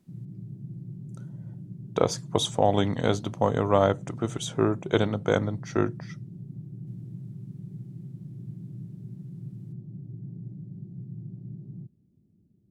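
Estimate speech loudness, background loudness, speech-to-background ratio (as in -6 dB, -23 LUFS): -26.5 LUFS, -41.0 LUFS, 14.5 dB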